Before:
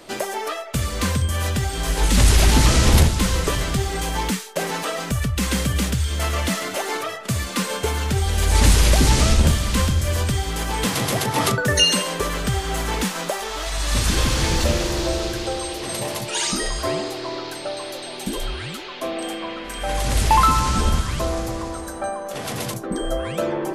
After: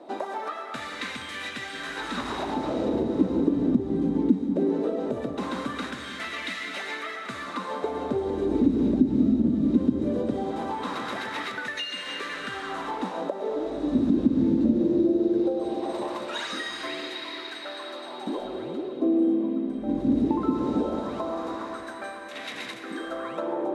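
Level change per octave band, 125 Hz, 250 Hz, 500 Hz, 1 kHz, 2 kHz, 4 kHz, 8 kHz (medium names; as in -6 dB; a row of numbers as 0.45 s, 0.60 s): -16.5 dB, +3.0 dB, -3.0 dB, -9.0 dB, -8.0 dB, -13.0 dB, under -20 dB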